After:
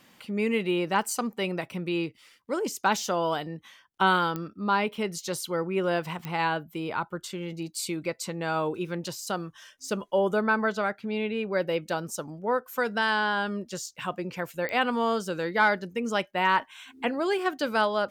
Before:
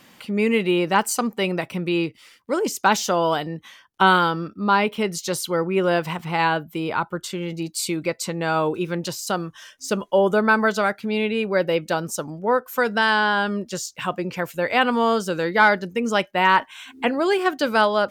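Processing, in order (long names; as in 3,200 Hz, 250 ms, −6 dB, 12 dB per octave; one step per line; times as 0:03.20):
0:10.44–0:11.53: high-shelf EQ 6,100 Hz −11.5 dB
digital clicks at 0:04.36/0:06.25/0:14.69, −12 dBFS
level −6.5 dB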